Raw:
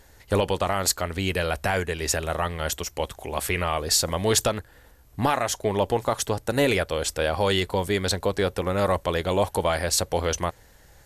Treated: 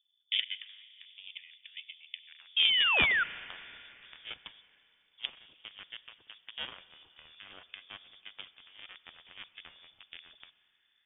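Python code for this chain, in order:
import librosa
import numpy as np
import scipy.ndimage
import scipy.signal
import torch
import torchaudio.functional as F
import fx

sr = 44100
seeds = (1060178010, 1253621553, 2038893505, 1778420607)

y = fx.dynamic_eq(x, sr, hz=690.0, q=1.4, threshold_db=-36.0, ratio=4.0, max_db=-7)
y = fx.env_phaser(y, sr, low_hz=590.0, high_hz=1600.0, full_db=-24.5)
y = fx.filter_sweep_lowpass(y, sr, from_hz=510.0, to_hz=1800.0, start_s=2.16, end_s=3.0, q=2.2)
y = fx.spec_paint(y, sr, seeds[0], shape='rise', start_s=2.56, length_s=0.68, low_hz=270.0, high_hz=2200.0, level_db=-17.0)
y = fx.cheby_harmonics(y, sr, harmonics=(3,), levels_db=(-9,), full_scale_db=-9.5)
y = fx.rev_schroeder(y, sr, rt60_s=3.1, comb_ms=30, drr_db=16.0)
y = fx.freq_invert(y, sr, carrier_hz=3500)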